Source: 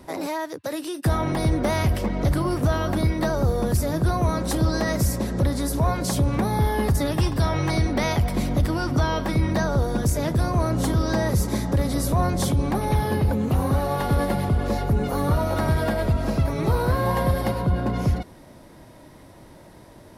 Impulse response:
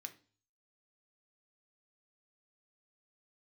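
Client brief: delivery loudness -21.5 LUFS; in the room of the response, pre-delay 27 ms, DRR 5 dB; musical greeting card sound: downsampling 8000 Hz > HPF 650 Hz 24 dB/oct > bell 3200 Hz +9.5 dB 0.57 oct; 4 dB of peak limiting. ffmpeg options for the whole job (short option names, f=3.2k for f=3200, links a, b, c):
-filter_complex "[0:a]alimiter=limit=-16.5dB:level=0:latency=1,asplit=2[a][b];[1:a]atrim=start_sample=2205,adelay=27[c];[b][c]afir=irnorm=-1:irlink=0,volume=-0.5dB[d];[a][d]amix=inputs=2:normalize=0,aresample=8000,aresample=44100,highpass=f=650:w=0.5412,highpass=f=650:w=1.3066,equalizer=f=3.2k:t=o:w=0.57:g=9.5,volume=9.5dB"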